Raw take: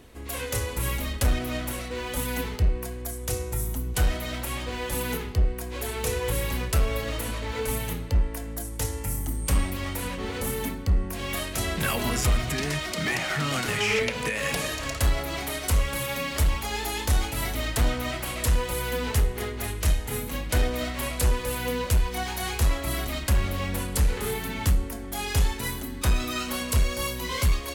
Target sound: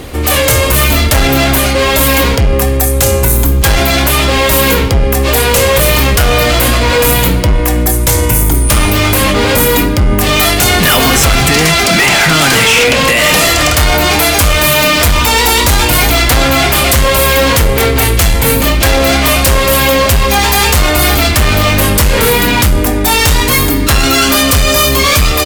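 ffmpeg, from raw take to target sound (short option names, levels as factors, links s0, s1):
-af "apsyclip=29.9,asetrate=48069,aresample=44100,volume=0.562"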